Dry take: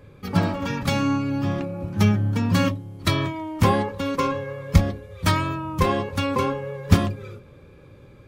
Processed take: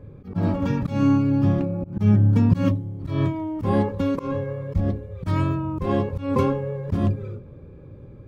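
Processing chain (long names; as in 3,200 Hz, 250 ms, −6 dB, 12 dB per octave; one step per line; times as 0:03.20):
tilt shelving filter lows +6.5 dB, about 720 Hz
volume swells 161 ms
one half of a high-frequency compander decoder only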